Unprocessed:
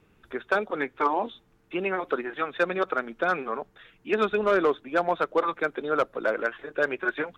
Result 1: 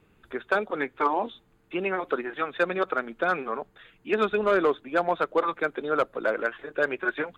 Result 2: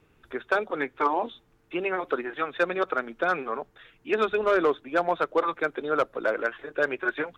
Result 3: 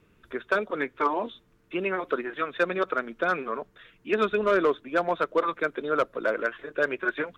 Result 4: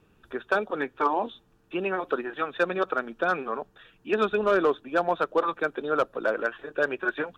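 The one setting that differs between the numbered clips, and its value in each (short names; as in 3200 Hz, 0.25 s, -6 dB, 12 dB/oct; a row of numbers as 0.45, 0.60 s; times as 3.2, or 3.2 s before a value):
notch, frequency: 5600, 200, 800, 2100 Hz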